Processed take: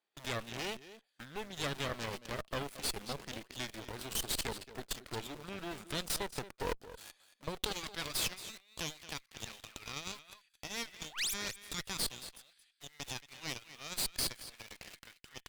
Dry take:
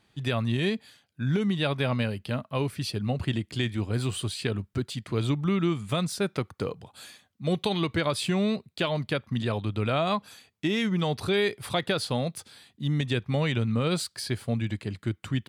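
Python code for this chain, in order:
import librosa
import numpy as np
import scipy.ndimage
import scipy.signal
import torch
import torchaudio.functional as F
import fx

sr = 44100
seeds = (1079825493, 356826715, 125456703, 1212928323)

p1 = fx.quant_companded(x, sr, bits=2)
p2 = x + (p1 * librosa.db_to_amplitude(-11.0))
p3 = fx.spec_paint(p2, sr, seeds[0], shape='rise', start_s=11.09, length_s=0.25, low_hz=500.0, high_hz=9800.0, level_db=-20.0)
p4 = fx.level_steps(p3, sr, step_db=16)
p5 = fx.filter_sweep_highpass(p4, sr, from_hz=450.0, to_hz=2000.0, start_s=7.47, end_s=8.38, q=1.1)
p6 = p5 + fx.echo_single(p5, sr, ms=225, db=-11.0, dry=0)
p7 = fx.cheby_harmonics(p6, sr, harmonics=(3, 6, 8), levels_db=(-12, -24, -17), full_scale_db=-16.5)
p8 = fx.dynamic_eq(p7, sr, hz=1000.0, q=0.91, threshold_db=-58.0, ratio=4.0, max_db=-3)
y = p8 * librosa.db_to_amplitude(5.0)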